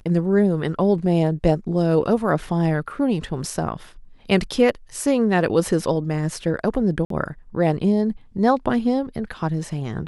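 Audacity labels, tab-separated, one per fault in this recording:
7.050000	7.100000	drop-out 53 ms

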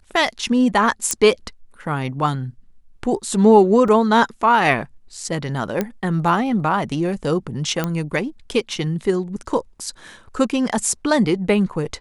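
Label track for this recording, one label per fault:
1.110000	1.110000	click −4 dBFS
3.880000	3.880000	drop-out 2.9 ms
5.810000	5.810000	click −8 dBFS
7.840000	7.840000	click −8 dBFS

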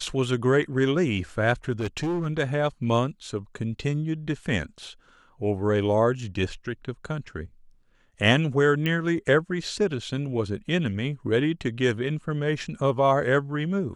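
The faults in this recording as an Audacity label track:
1.790000	2.270000	clipping −23.5 dBFS
8.860000	8.860000	click −15 dBFS

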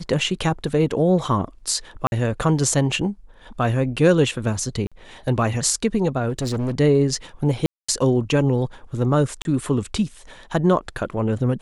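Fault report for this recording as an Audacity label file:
2.070000	2.120000	drop-out 51 ms
4.870000	4.920000	drop-out 46 ms
6.290000	6.740000	clipping −20.5 dBFS
7.660000	7.880000	drop-out 225 ms
9.420000	9.450000	drop-out 31 ms

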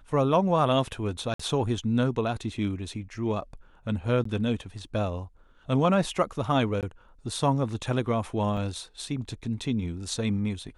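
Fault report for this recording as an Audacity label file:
1.340000	1.390000	drop-out 54 ms
4.240000	4.250000	drop-out 14 ms
6.810000	6.830000	drop-out 18 ms
8.570000	8.570000	drop-out 3.2 ms

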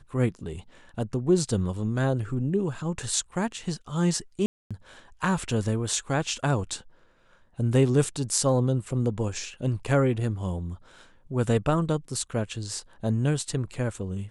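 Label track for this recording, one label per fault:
4.460000	4.710000	drop-out 246 ms

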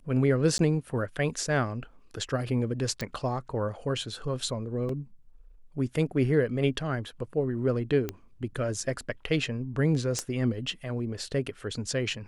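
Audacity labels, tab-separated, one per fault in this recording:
0.580000	0.590000	drop-out 12 ms
3.010000	3.010000	click −18 dBFS
4.890000	4.890000	drop-out 3.2 ms
8.090000	8.090000	click −17 dBFS
10.190000	10.190000	click −15 dBFS

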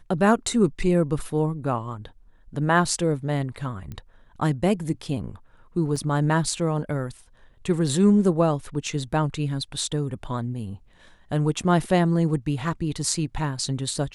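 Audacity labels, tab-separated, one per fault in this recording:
3.920000	3.920000	click −23 dBFS
5.960000	5.960000	drop-out 4.6 ms

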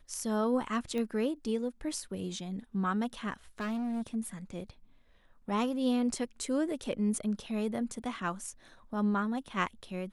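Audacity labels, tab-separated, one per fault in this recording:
0.980000	0.980000	click −24 dBFS
3.590000	4.160000	clipping −31.5 dBFS

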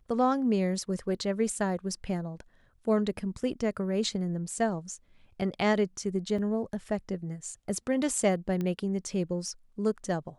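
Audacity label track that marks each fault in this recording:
6.380000	6.380000	drop-out 4.4 ms
8.610000	8.610000	click −21 dBFS

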